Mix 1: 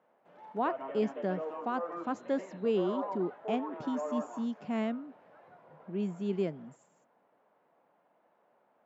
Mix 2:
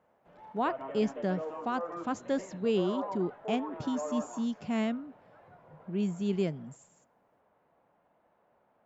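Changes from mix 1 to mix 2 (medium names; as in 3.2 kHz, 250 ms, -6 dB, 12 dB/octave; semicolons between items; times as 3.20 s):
speech: add treble shelf 3.2 kHz +12 dB; master: remove high-pass 210 Hz 12 dB/octave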